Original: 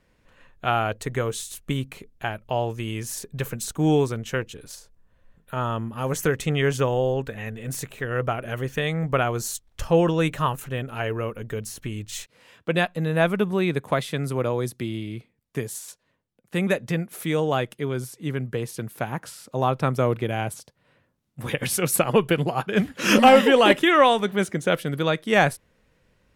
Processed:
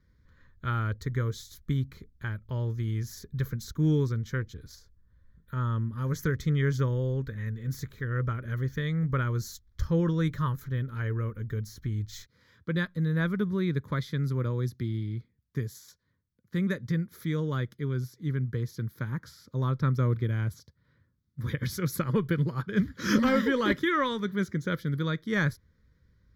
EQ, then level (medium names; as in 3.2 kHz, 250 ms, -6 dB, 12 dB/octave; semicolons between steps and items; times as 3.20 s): peaking EQ 73 Hz +13.5 dB 2 oct; static phaser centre 2.7 kHz, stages 6; -6.5 dB